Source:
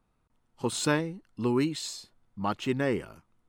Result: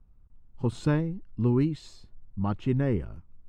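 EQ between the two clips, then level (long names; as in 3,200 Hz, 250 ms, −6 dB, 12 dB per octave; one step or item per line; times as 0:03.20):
RIAA equalisation playback
low-shelf EQ 99 Hz +8.5 dB
−5.5 dB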